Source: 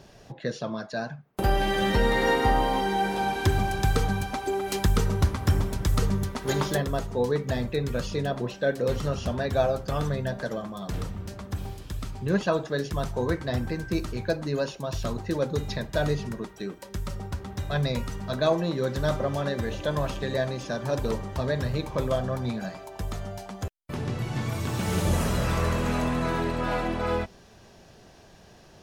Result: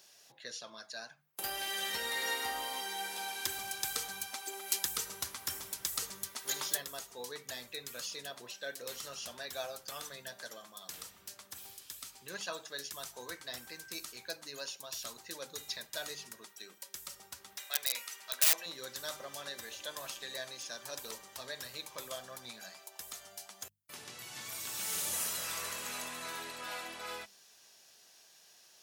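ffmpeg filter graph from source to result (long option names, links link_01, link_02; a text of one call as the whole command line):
ffmpeg -i in.wav -filter_complex "[0:a]asettb=1/sr,asplit=3[link_01][link_02][link_03];[link_01]atrim=end=17.574[link_04];[link_02]atrim=start=17.57:end=18.66,asetpts=PTS-STARTPTS,afade=type=in:duration=0.004:curve=qsin,afade=type=out:start_time=1.086:duration=0.004:curve=qsin,highpass=470,equalizer=frequency=2300:width_type=o:width=0.89:gain=6.5,aeval=exprs='(mod(8.91*val(0)+1,2)-1)/8.91':channel_layout=same[link_05];[link_03]atrim=start=18.656[link_06];[link_04][link_05]acrossfade=duration=0.004:curve1=hsin:curve2=qsin[link_07];[link_07][link_06]acrossfade=duration=0.004:curve1=qsin:curve2=hsin,aderivative,bandreject=frequency=50:width_type=h:width=6,bandreject=frequency=100:width_type=h:width=6,bandreject=frequency=150:width_type=h:width=6,bandreject=frequency=200:width_type=h:width=6,volume=3dB" out.wav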